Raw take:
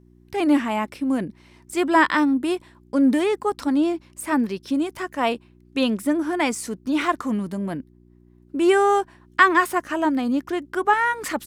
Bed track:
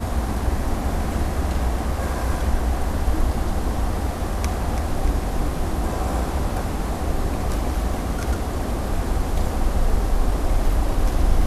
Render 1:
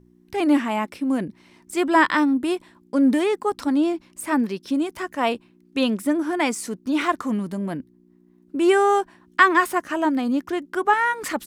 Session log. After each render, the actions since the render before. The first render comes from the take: de-hum 60 Hz, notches 2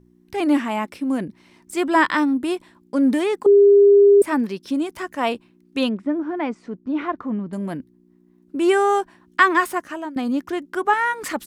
3.46–4.22 bleep 403 Hz -8 dBFS; 5.89–7.53 tape spacing loss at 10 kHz 40 dB; 9.5–10.16 fade out equal-power, to -18 dB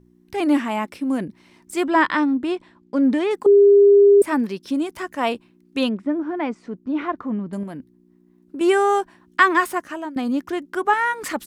1.87–3.31 air absorption 92 m; 7.63–8.61 compressor, threshold -29 dBFS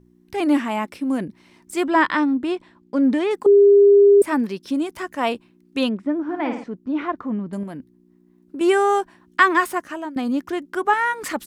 6.23–6.64 flutter echo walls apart 9.4 m, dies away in 0.6 s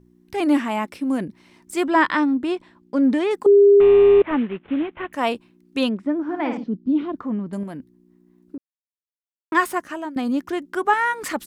3.8–5.13 CVSD 16 kbps; 6.57–7.16 EQ curve 100 Hz 0 dB, 220 Hz +8 dB, 730 Hz -8 dB, 2000 Hz -15 dB, 3200 Hz -1 dB, 4900 Hz -4 dB, 8100 Hz -22 dB; 8.58–9.52 mute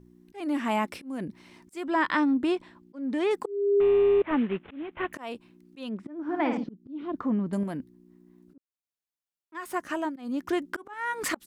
compressor 3:1, threshold -22 dBFS, peak gain reduction 9 dB; auto swell 0.345 s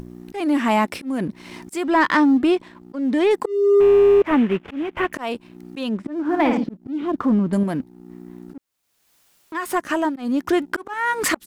in parallel at -1 dB: upward compressor, threshold -28 dBFS; on the sum: sample leveller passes 1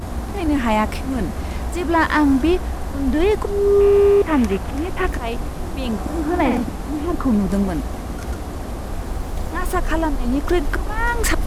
add bed track -3.5 dB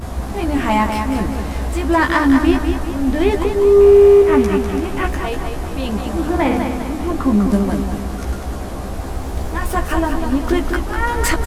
doubler 15 ms -4.5 dB; on a send: feedback echo 0.199 s, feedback 46%, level -6.5 dB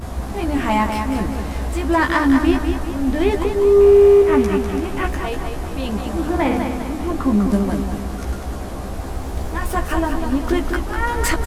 gain -2 dB

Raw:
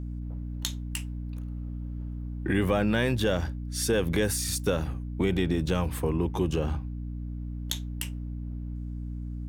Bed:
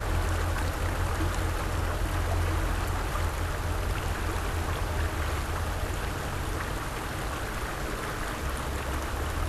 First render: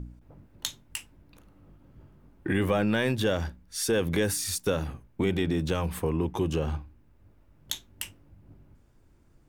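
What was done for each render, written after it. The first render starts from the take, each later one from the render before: de-hum 60 Hz, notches 5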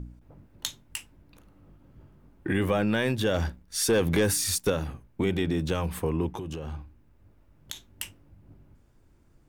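3.34–4.7 sample leveller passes 1; 6.33–7.88 compressor 10:1, threshold -31 dBFS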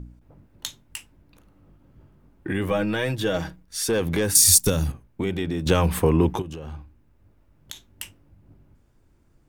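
2.7–3.65 comb 6.3 ms, depth 67%; 4.35–4.92 tone controls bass +10 dB, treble +15 dB; 5.66–6.42 gain +9 dB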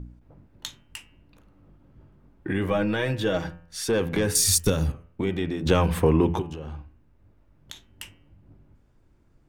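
high shelf 6500 Hz -10 dB; de-hum 84.33 Hz, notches 37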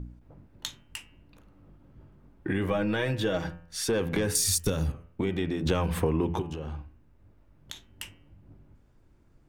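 compressor 2.5:1, threshold -25 dBFS, peak gain reduction 7.5 dB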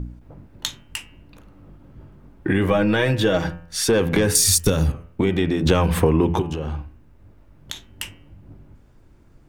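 gain +9 dB

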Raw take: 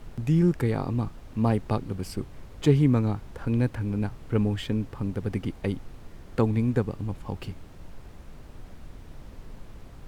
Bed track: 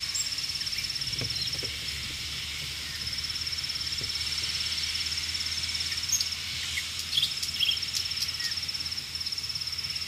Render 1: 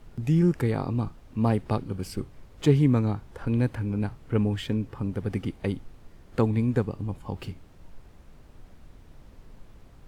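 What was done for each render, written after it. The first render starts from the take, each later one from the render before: noise print and reduce 6 dB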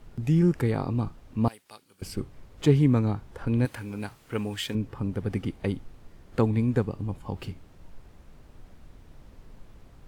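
1.48–2.02 differentiator; 3.65–4.75 tilt +3 dB/oct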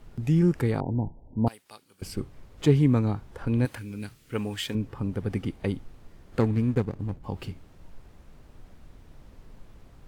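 0.8–1.47 brick-wall FIR low-pass 1000 Hz; 3.78–4.34 bell 850 Hz -13.5 dB 1.4 oct; 6.4–7.24 median filter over 41 samples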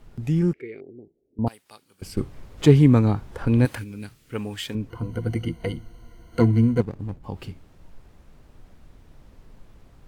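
0.53–1.39 double band-pass 930 Hz, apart 2.5 oct; 2.17–3.84 gain +6 dB; 4.9–6.81 ripple EQ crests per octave 1.9, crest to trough 17 dB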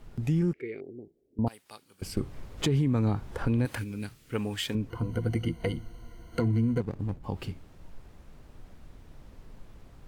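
limiter -14 dBFS, peak gain reduction 11.5 dB; compressor 2:1, threshold -26 dBFS, peak gain reduction 5.5 dB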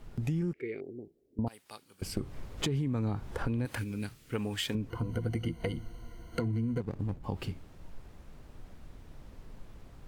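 compressor 4:1, threshold -29 dBFS, peak gain reduction 6.5 dB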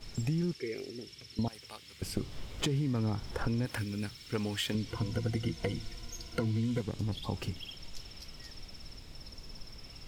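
add bed track -20 dB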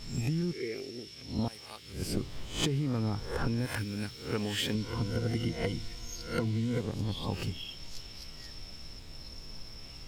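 spectral swells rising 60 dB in 0.42 s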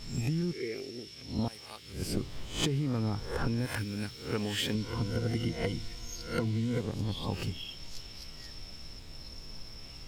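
nothing audible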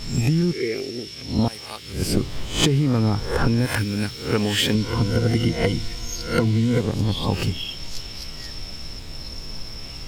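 gain +11.5 dB

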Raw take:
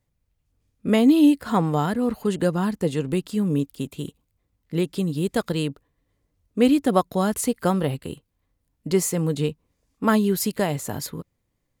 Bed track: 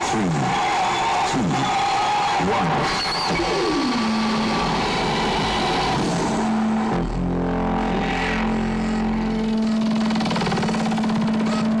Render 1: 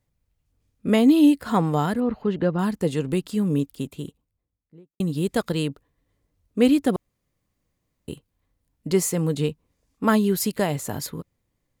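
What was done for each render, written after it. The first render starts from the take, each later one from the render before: 2–2.59 air absorption 270 m; 3.63–5 studio fade out; 6.96–8.08 room tone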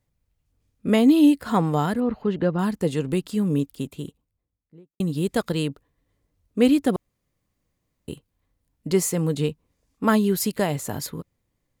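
nothing audible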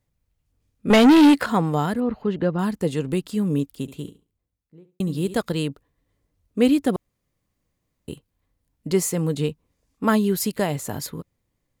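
0.9–1.46 overdrive pedal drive 26 dB, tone 3200 Hz, clips at -6 dBFS; 3.81–5.41 flutter echo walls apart 11.9 m, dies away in 0.3 s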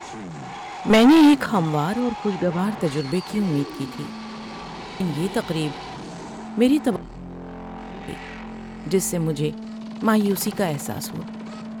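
add bed track -14 dB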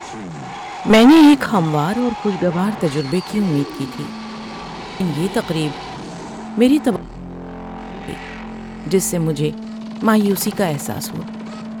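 gain +4.5 dB

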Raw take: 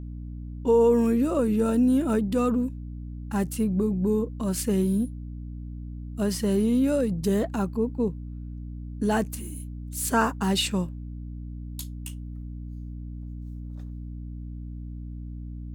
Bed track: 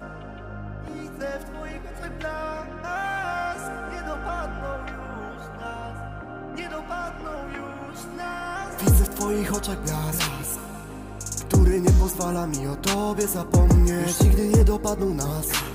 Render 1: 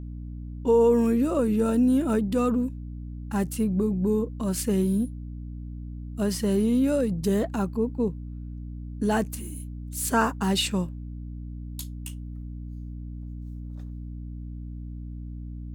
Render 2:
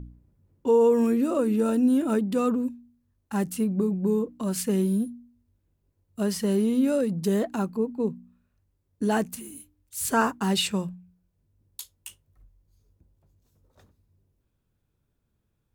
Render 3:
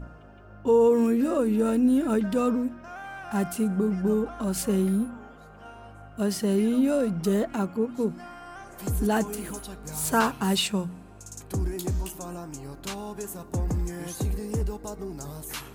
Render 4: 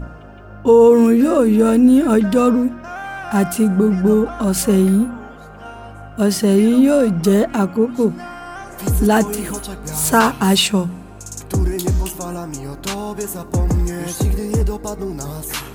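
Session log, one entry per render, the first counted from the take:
nothing audible
de-hum 60 Hz, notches 5
add bed track -11.5 dB
gain +10.5 dB; limiter -2 dBFS, peak gain reduction 2 dB

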